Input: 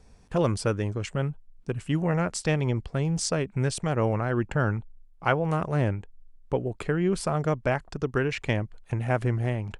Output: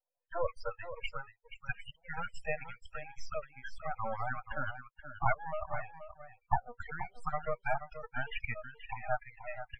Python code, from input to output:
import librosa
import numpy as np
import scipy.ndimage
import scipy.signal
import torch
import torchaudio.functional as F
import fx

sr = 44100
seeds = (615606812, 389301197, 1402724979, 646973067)

p1 = fx.spec_dropout(x, sr, seeds[0], share_pct=26)
p2 = fx.recorder_agc(p1, sr, target_db=-15.0, rise_db_per_s=33.0, max_gain_db=30)
p3 = fx.noise_reduce_blind(p2, sr, reduce_db=26)
p4 = scipy.signal.sosfilt(scipy.signal.cheby1(10, 1.0, 480.0, 'highpass', fs=sr, output='sos'), p3)
p5 = np.maximum(p4, 0.0)
p6 = fx.spec_topn(p5, sr, count=16)
p7 = scipy.signal.savgol_filter(p6, 25, 4, mode='constant')
p8 = p7 + fx.echo_single(p7, sr, ms=479, db=-11.0, dry=0)
y = p8 * 10.0 ** (2.0 / 20.0)